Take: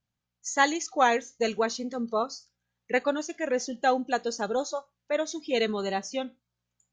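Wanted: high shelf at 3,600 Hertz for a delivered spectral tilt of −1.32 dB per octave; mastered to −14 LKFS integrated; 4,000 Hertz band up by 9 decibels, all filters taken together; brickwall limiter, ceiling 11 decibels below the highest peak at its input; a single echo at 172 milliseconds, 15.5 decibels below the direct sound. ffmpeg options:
ffmpeg -i in.wav -af "highshelf=frequency=3600:gain=5.5,equalizer=frequency=4000:width_type=o:gain=7.5,alimiter=limit=-16dB:level=0:latency=1,aecho=1:1:172:0.168,volume=14.5dB" out.wav

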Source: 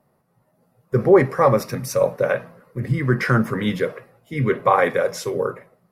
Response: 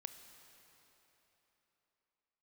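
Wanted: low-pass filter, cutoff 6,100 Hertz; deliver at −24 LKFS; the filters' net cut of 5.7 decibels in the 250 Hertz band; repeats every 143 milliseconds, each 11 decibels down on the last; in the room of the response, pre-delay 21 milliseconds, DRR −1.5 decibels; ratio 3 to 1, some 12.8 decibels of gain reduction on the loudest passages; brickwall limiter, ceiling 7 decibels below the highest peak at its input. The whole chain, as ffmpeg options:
-filter_complex "[0:a]lowpass=6100,equalizer=frequency=250:width_type=o:gain=-9,acompressor=threshold=-29dB:ratio=3,alimiter=limit=-21.5dB:level=0:latency=1,aecho=1:1:143|286|429:0.282|0.0789|0.0221,asplit=2[link_01][link_02];[1:a]atrim=start_sample=2205,adelay=21[link_03];[link_02][link_03]afir=irnorm=-1:irlink=0,volume=5.5dB[link_04];[link_01][link_04]amix=inputs=2:normalize=0,volume=6dB"

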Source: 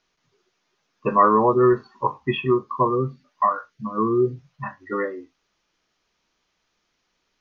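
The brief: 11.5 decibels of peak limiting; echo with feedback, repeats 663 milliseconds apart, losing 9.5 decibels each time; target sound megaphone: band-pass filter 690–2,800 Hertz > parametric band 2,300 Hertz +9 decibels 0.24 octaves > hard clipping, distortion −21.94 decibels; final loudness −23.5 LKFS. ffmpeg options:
ffmpeg -i in.wav -af "alimiter=limit=-14.5dB:level=0:latency=1,highpass=690,lowpass=2800,equalizer=frequency=2300:width_type=o:width=0.24:gain=9,aecho=1:1:663|1326|1989|2652:0.335|0.111|0.0365|0.012,asoftclip=type=hard:threshold=-19.5dB,volume=7.5dB" out.wav

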